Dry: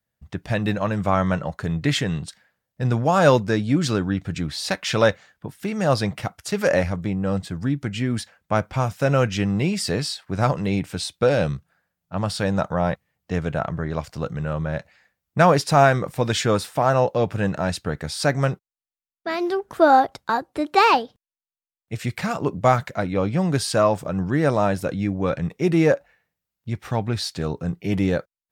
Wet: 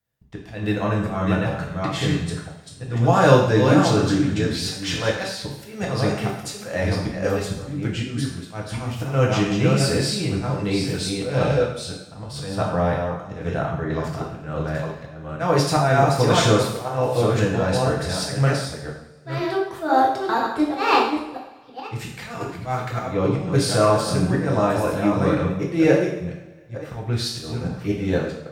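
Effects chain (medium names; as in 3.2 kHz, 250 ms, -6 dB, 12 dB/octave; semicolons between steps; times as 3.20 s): chunks repeated in reverse 497 ms, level -5 dB; slow attack 216 ms; two-slope reverb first 0.68 s, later 1.9 s, DRR -2.5 dB; trim -3 dB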